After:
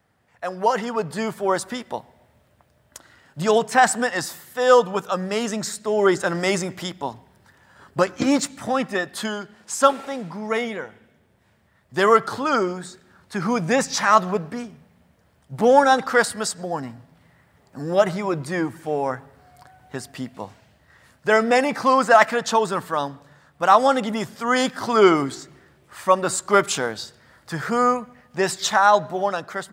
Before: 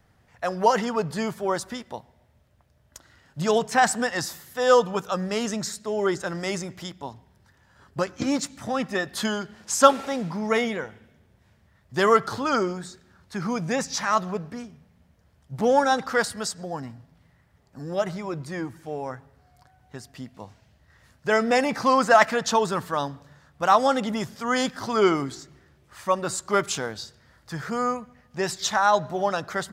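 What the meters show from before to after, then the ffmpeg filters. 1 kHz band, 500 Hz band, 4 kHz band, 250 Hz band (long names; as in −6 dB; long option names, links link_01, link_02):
+4.0 dB, +4.0 dB, +2.5 dB, +3.0 dB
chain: -af "highpass=frequency=200:poles=1,highshelf=frequency=6600:gain=-9.5,dynaudnorm=framelen=290:gausssize=7:maxgain=11.5dB,aexciter=amount=2.6:drive=3.3:freq=7900,volume=-1dB"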